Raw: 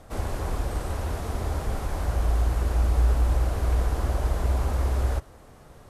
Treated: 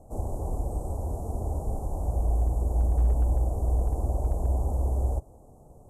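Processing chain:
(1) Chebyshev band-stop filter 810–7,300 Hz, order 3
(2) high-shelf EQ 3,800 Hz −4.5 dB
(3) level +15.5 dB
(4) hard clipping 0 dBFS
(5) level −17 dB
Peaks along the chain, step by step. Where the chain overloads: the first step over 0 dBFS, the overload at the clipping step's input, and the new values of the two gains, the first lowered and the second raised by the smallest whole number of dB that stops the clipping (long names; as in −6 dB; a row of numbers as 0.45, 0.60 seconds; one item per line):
−12.5, −12.5, +3.0, 0.0, −17.0 dBFS
step 3, 3.0 dB
step 3 +12.5 dB, step 5 −14 dB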